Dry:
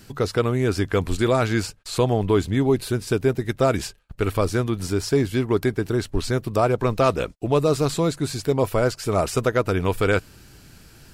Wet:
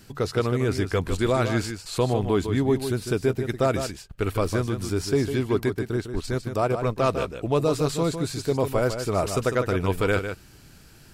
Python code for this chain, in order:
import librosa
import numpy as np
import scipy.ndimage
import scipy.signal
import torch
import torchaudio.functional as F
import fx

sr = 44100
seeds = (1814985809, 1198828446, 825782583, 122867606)

y = fx.transient(x, sr, attack_db=-3, sustain_db=-7, at=(5.7, 7.11))
y = y + 10.0 ** (-8.5 / 20.0) * np.pad(y, (int(152 * sr / 1000.0), 0))[:len(y)]
y = y * librosa.db_to_amplitude(-3.0)